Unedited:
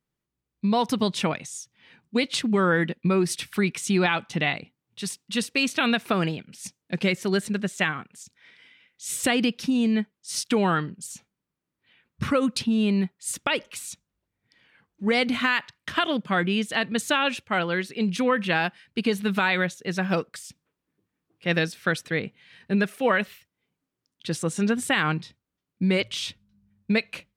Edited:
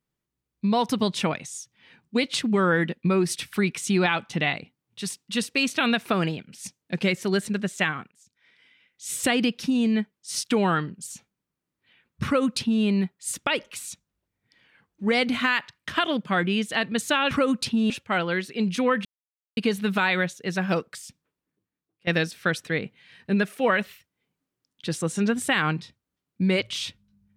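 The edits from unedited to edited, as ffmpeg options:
-filter_complex "[0:a]asplit=7[s0][s1][s2][s3][s4][s5][s6];[s0]atrim=end=8.11,asetpts=PTS-STARTPTS,afade=t=out:st=8.106:d=0.004:c=hsin:silence=0.133352[s7];[s1]atrim=start=8.11:end=17.312,asetpts=PTS-STARTPTS,afade=t=in:d=1.12:silence=0.133352[s8];[s2]atrim=start=12.248:end=12.842[s9];[s3]atrim=start=17.308:end=18.46,asetpts=PTS-STARTPTS,afade=t=out:st=1.148:d=0.004:c=hsin[s10];[s4]atrim=start=18.46:end=18.98,asetpts=PTS-STARTPTS,volume=0[s11];[s5]atrim=start=18.98:end=21.48,asetpts=PTS-STARTPTS,afade=t=in:d=0.004:c=hsin,afade=t=out:st=1.46:d=1.04:silence=0.0944061[s12];[s6]atrim=start=21.48,asetpts=PTS-STARTPTS,afade=t=in:d=0.004:c=hsin:silence=0.0944061[s13];[s7][s8]concat=n=2:v=0:a=1[s14];[s14][s9]acrossfade=d=0.004:c1=hsin:c2=hsin[s15];[s10][s11][s12][s13]concat=n=4:v=0:a=1[s16];[s15][s16]acrossfade=d=0.004:c1=hsin:c2=hsin"

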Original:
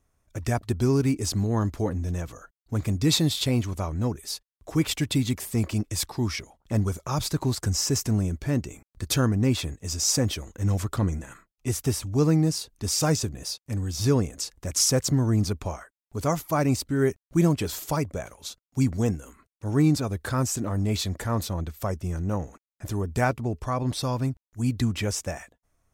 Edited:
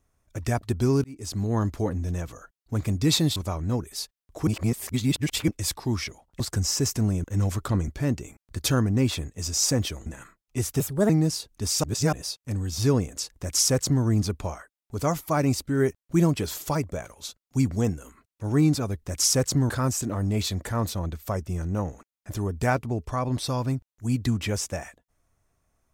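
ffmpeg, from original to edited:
-filter_complex "[0:a]asplit=15[s0][s1][s2][s3][s4][s5][s6][s7][s8][s9][s10][s11][s12][s13][s14];[s0]atrim=end=1.04,asetpts=PTS-STARTPTS,afade=t=out:st=1.036:d=0.004:c=hsin[s15];[s1]atrim=start=1.04:end=3.362,asetpts=PTS-STARTPTS,afade=t=in:d=0.49[s16];[s2]atrim=start=3.678:end=4.792[s17];[s3]atrim=start=4.788:end=5.802,asetpts=PTS-STARTPTS,areverse[s18];[s4]atrim=start=5.798:end=6.722[s19];[s5]atrim=start=7.498:end=8.342[s20];[s6]atrim=start=10.518:end=11.162[s21];[s7]atrim=start=8.338:end=10.522[s22];[s8]atrim=start=11.158:end=11.904[s23];[s9]atrim=start=11.9:end=12.31,asetpts=PTS-STARTPTS,asetrate=61299,aresample=44100[s24];[s10]atrim=start=12.306:end=13.052[s25];[s11]atrim=start=13.048:end=13.342,asetpts=PTS-STARTPTS,areverse[s26];[s12]atrim=start=13.338:end=20.242[s27];[s13]atrim=start=14.588:end=15.262[s28];[s14]atrim=start=20.238[s29];[s15][s16]concat=n=2:v=0:a=1[s30];[s30][s17]acrossfade=d=0.004:c1=hsin:c2=hsin[s31];[s31][s18]acrossfade=d=0.004:c1=hsin:c2=hsin[s32];[s32][s19]acrossfade=d=0.004:c1=hsin:c2=hsin[s33];[s33][s20]acrossfade=d=0.004:c1=hsin:c2=hsin[s34];[s34][s21]acrossfade=d=0.004:c1=hsin:c2=hsin[s35];[s35][s22]acrossfade=d=0.004:c1=hsin:c2=hsin[s36];[s36][s23]acrossfade=d=0.004:c1=hsin:c2=hsin[s37];[s37][s24]acrossfade=d=0.004:c1=hsin:c2=hsin[s38];[s38][s25]acrossfade=d=0.004:c1=hsin:c2=hsin[s39];[s39][s26]acrossfade=d=0.004:c1=hsin:c2=hsin[s40];[s40][s27]acrossfade=d=0.004:c1=hsin:c2=hsin[s41];[s41][s28]acrossfade=d=0.004:c1=hsin:c2=hsin[s42];[s42][s29]acrossfade=d=0.004:c1=hsin:c2=hsin"

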